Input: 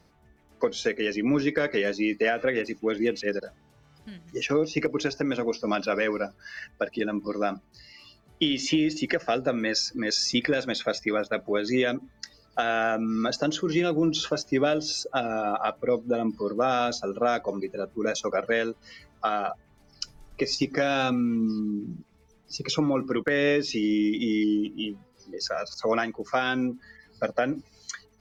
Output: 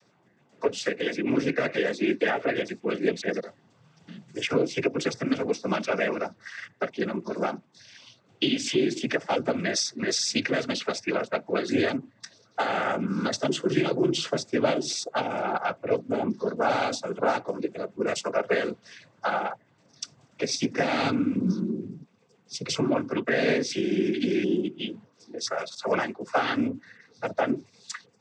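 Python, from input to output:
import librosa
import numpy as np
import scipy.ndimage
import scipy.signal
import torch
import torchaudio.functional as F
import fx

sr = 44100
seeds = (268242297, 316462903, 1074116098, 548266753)

y = fx.noise_vocoder(x, sr, seeds[0], bands=16)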